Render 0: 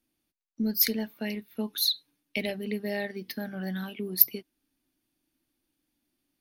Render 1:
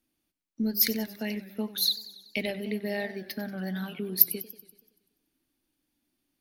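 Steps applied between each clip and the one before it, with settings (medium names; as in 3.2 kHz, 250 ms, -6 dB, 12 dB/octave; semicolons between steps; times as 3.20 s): modulated delay 95 ms, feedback 60%, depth 136 cents, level -16 dB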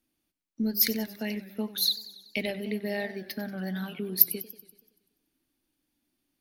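no audible change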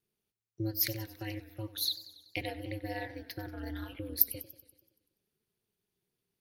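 ring modulator 110 Hz; trim -3.5 dB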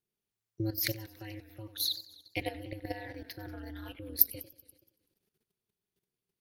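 level held to a coarse grid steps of 12 dB; trim +5 dB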